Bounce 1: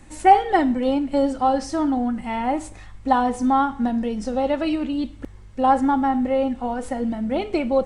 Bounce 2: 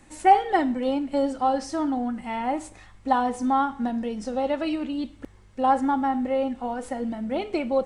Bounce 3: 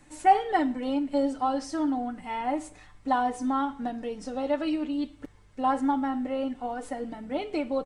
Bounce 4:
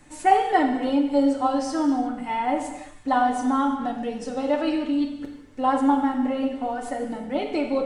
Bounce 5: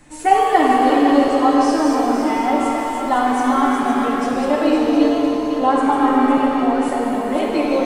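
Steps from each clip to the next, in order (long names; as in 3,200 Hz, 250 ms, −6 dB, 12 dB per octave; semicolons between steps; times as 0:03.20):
low-shelf EQ 130 Hz −8.5 dB; level −3 dB
comb filter 6.8 ms, depth 56%; level −4 dB
reverb whose tail is shaped and stops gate 390 ms falling, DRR 3.5 dB; level +3.5 dB
feedback delay that plays each chunk backwards 255 ms, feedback 61%, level −4.5 dB; reverb with rising layers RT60 2.3 s, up +7 semitones, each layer −8 dB, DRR 2 dB; level +3.5 dB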